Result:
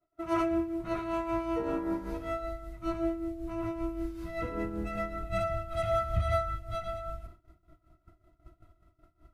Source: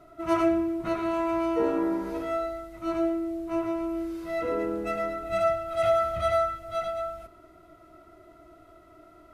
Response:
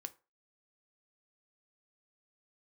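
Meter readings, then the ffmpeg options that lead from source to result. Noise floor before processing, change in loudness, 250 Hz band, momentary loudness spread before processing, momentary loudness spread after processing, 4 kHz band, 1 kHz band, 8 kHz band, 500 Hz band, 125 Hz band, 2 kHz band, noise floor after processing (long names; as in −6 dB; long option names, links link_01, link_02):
−54 dBFS, −5.5 dB, −5.0 dB, 8 LU, 8 LU, −5.0 dB, −5.5 dB, can't be measured, −7.0 dB, +6.5 dB, −4.5 dB, −73 dBFS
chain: -filter_complex "[0:a]tremolo=f=5.2:d=0.56,asubboost=boost=6.5:cutoff=160,agate=range=-33dB:threshold=-41dB:ratio=3:detection=peak,asplit=2[link_01][link_02];[1:a]atrim=start_sample=2205[link_03];[link_02][link_03]afir=irnorm=-1:irlink=0,volume=-2.5dB[link_04];[link_01][link_04]amix=inputs=2:normalize=0,volume=-5.5dB"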